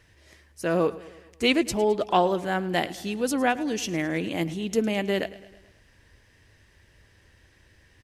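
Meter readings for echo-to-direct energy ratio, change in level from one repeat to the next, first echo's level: -16.5 dB, -5.0 dB, -18.0 dB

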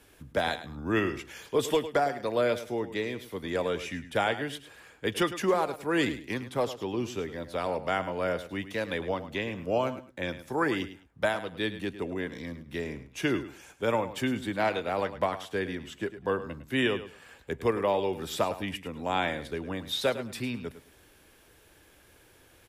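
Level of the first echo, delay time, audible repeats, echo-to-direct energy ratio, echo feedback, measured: -13.0 dB, 0.105 s, 2, -13.0 dB, 21%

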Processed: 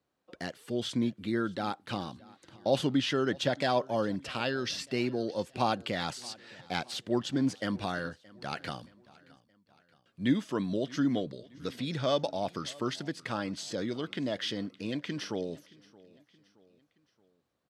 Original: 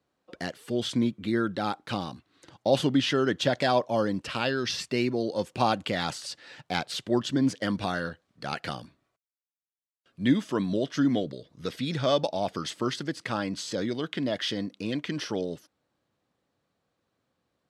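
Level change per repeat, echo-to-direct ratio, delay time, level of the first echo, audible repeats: -6.5 dB, -22.0 dB, 0.623 s, -23.0 dB, 2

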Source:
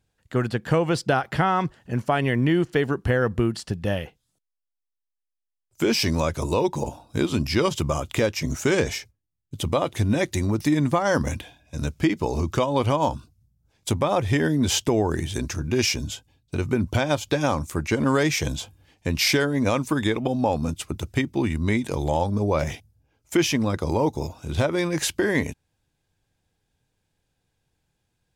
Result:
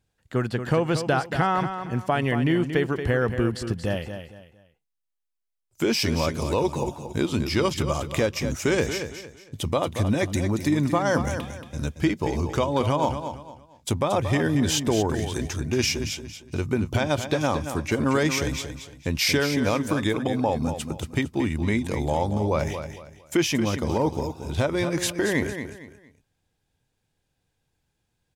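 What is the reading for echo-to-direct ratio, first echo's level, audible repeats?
-8.5 dB, -9.0 dB, 3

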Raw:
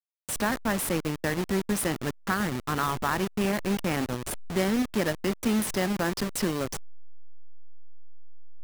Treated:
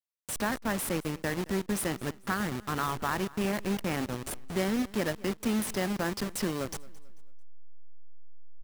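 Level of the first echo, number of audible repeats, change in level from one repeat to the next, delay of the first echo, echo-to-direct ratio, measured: -21.5 dB, 2, -8.5 dB, 0.221 s, -21.0 dB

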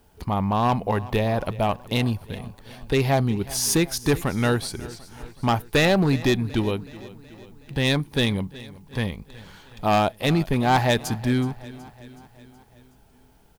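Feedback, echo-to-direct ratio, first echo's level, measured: 57%, -17.5 dB, -19.0 dB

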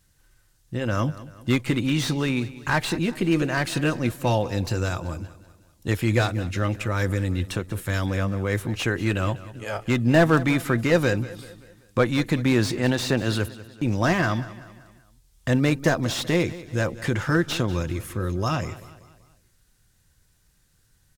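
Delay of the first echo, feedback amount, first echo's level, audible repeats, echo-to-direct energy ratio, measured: 0.192 s, 47%, -17.0 dB, 3, -16.0 dB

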